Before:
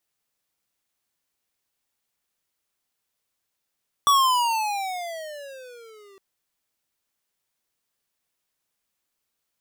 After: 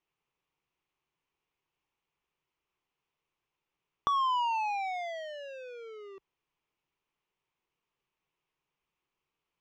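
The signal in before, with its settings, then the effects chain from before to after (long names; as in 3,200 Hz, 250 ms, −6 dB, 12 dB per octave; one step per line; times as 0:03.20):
pitch glide with a swell square, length 2.11 s, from 1,150 Hz, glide −19 semitones, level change −34.5 dB, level −16 dB
EQ curve with evenly spaced ripples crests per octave 0.72, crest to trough 8 dB
downward compressor 3 to 1, threshold −30 dBFS
high-frequency loss of the air 250 metres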